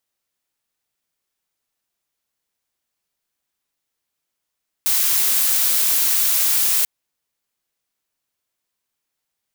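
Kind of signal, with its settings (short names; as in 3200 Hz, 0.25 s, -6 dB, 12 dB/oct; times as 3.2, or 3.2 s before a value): noise blue, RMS -17.5 dBFS 1.99 s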